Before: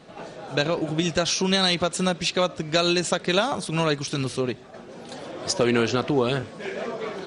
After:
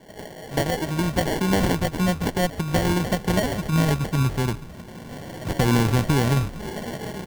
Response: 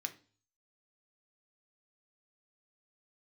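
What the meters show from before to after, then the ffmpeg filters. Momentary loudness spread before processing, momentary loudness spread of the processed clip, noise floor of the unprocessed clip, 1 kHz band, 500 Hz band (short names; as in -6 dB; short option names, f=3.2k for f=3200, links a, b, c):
16 LU, 15 LU, -44 dBFS, +1.0 dB, -2.5 dB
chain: -filter_complex "[0:a]asubboost=boost=6:cutoff=160,asplit=6[a][b][c][d][e][f];[b]adelay=142,afreqshift=-100,volume=-16.5dB[g];[c]adelay=284,afreqshift=-200,volume=-21.9dB[h];[d]adelay=426,afreqshift=-300,volume=-27.2dB[i];[e]adelay=568,afreqshift=-400,volume=-32.6dB[j];[f]adelay=710,afreqshift=-500,volume=-37.9dB[k];[a][g][h][i][j][k]amix=inputs=6:normalize=0,acrusher=samples=35:mix=1:aa=0.000001"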